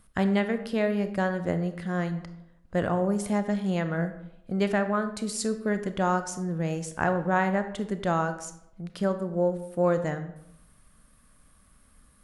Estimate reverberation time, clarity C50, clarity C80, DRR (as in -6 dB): 0.80 s, 11.0 dB, 13.5 dB, 9.0 dB